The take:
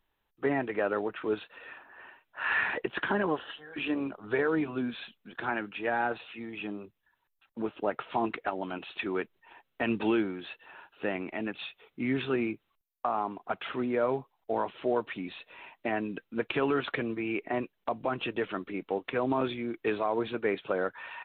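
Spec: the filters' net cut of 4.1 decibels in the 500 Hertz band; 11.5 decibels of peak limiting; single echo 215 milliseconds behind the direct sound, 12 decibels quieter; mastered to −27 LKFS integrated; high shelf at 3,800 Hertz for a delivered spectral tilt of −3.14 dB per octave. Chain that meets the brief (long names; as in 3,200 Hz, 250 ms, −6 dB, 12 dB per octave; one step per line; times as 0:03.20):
parametric band 500 Hz −5.5 dB
high-shelf EQ 3,800 Hz +5 dB
brickwall limiter −25 dBFS
single-tap delay 215 ms −12 dB
level +10 dB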